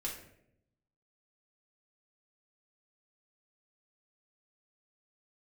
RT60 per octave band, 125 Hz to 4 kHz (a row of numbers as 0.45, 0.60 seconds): 1.2, 1.0, 0.90, 0.60, 0.65, 0.45 seconds